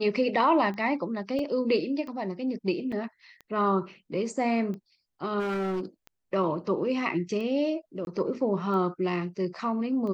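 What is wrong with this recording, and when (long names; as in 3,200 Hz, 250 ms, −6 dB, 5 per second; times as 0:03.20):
scratch tick 45 rpm −28 dBFS
0:01.39: drop-out 2.2 ms
0:02.92: drop-out 4.3 ms
0:05.39–0:05.85: clipping −26.5 dBFS
0:08.05–0:08.07: drop-out 21 ms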